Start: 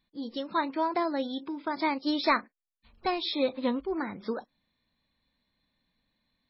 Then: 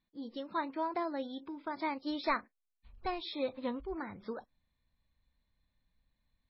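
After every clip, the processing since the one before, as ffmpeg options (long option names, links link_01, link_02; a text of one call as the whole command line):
ffmpeg -i in.wav -af "lowpass=frequency=2900:poles=1,asubboost=boost=5.5:cutoff=100,volume=-6dB" out.wav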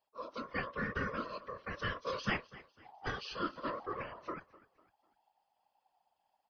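ffmpeg -i in.wav -af "aecho=1:1:250|500|750:0.1|0.039|0.0152,aeval=exprs='val(0)*sin(2*PI*810*n/s)':channel_layout=same,afftfilt=real='hypot(re,im)*cos(2*PI*random(0))':imag='hypot(re,im)*sin(2*PI*random(1))':win_size=512:overlap=0.75,volume=7dB" out.wav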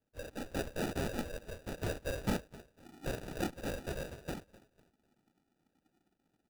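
ffmpeg -i in.wav -af "acrusher=samples=41:mix=1:aa=0.000001,volume=1dB" out.wav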